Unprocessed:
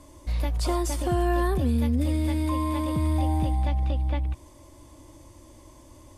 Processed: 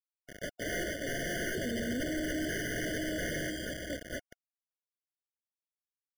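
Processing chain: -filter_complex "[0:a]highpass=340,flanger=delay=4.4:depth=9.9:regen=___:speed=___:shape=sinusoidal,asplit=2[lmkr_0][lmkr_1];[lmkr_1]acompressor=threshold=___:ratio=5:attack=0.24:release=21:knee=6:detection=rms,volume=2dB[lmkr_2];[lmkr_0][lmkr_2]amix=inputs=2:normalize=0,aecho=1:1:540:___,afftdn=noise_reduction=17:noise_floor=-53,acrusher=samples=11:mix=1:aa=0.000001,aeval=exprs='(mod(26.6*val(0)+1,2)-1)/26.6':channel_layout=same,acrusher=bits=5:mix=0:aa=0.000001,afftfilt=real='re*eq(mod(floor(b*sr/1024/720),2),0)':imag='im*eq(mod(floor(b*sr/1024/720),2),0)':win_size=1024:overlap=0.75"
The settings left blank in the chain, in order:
57, 1.9, -43dB, 0.0841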